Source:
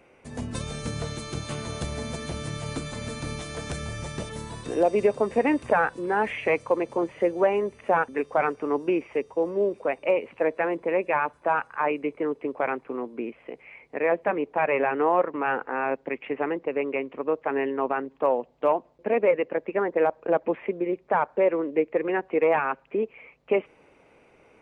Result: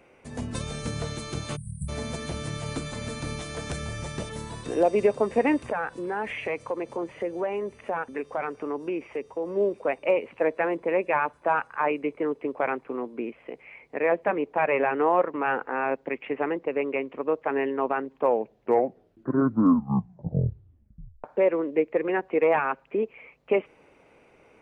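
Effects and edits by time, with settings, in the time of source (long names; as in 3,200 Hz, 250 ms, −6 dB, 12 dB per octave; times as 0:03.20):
0:01.56–0:01.89: time-frequency box erased 210–7,700 Hz
0:05.68–0:09.51: downward compressor 2 to 1, threshold −30 dBFS
0:18.11: tape stop 3.13 s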